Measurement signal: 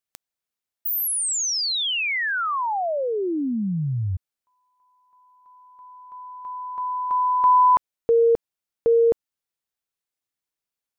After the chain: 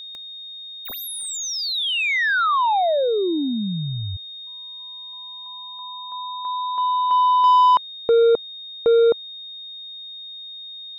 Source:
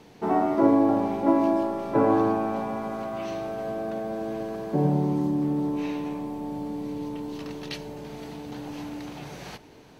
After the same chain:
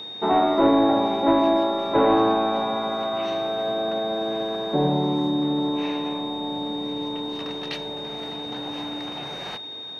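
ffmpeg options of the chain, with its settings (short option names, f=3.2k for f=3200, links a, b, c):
-filter_complex "[0:a]asplit=2[a][b];[b]highpass=f=720:p=1,volume=15dB,asoftclip=type=tanh:threshold=-7.5dB[c];[a][c]amix=inputs=2:normalize=0,lowpass=f=1.5k:p=1,volume=-6dB,aeval=exprs='val(0)+0.02*sin(2*PI*3700*n/s)':c=same"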